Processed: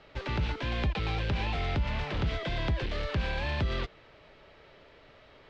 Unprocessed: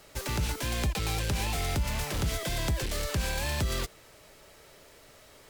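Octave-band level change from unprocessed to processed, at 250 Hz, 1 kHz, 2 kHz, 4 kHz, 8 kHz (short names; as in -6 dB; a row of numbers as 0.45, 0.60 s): 0.0, 0.0, 0.0, -3.5, -22.5 dB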